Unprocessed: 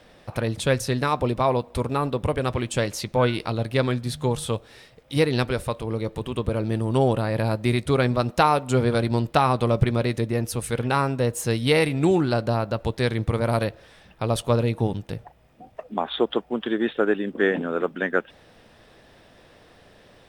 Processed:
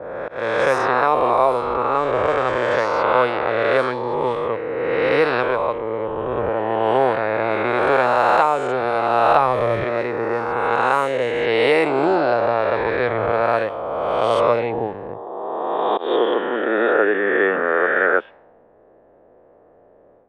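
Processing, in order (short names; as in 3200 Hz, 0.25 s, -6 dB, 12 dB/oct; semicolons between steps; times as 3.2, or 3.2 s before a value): spectral swells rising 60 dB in 2.90 s; three-band isolator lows -18 dB, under 370 Hz, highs -16 dB, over 2400 Hz; low-pass opened by the level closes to 530 Hz, open at -15 dBFS; AGC gain up to 5 dB; auto swell 0.149 s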